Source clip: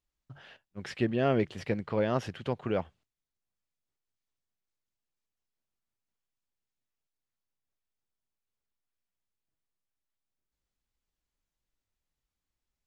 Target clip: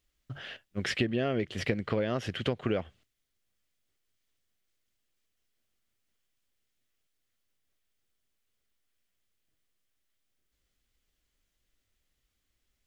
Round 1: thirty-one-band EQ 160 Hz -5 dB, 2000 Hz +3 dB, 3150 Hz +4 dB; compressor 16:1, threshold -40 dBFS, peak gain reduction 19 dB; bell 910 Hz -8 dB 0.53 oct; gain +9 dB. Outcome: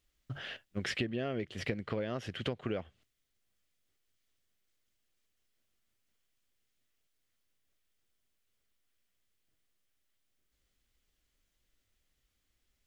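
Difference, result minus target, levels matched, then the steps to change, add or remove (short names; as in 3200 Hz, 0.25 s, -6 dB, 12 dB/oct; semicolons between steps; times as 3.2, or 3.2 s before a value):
compressor: peak gain reduction +6 dB
change: compressor 16:1, threshold -33.5 dBFS, peak gain reduction 13 dB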